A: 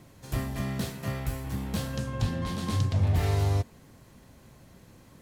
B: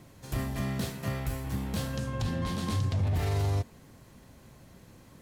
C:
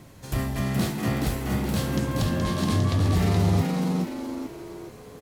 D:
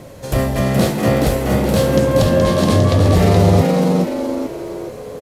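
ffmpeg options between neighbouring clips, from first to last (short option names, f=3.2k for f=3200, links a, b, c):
-af "alimiter=limit=-21.5dB:level=0:latency=1:release=28"
-filter_complex "[0:a]asplit=6[a][b][c][d][e][f];[b]adelay=423,afreqshift=82,volume=-3.5dB[g];[c]adelay=846,afreqshift=164,volume=-11dB[h];[d]adelay=1269,afreqshift=246,volume=-18.6dB[i];[e]adelay=1692,afreqshift=328,volume=-26.1dB[j];[f]adelay=2115,afreqshift=410,volume=-33.6dB[k];[a][g][h][i][j][k]amix=inputs=6:normalize=0,volume=5dB"
-af "equalizer=f=540:w=2.4:g=12.5,aresample=32000,aresample=44100,volume=8.5dB"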